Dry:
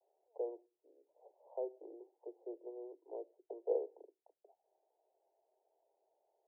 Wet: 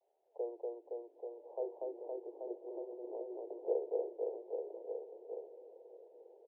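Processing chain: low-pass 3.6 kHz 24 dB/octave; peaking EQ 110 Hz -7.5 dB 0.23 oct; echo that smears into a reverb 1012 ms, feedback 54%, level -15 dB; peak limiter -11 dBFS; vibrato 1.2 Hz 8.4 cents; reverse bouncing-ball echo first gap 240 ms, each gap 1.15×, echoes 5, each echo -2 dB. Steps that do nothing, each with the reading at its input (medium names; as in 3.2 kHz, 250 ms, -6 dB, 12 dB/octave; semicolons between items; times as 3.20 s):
low-pass 3.6 kHz: input has nothing above 910 Hz; peaking EQ 110 Hz: input has nothing below 290 Hz; peak limiter -11 dBFS: peak at its input -24.0 dBFS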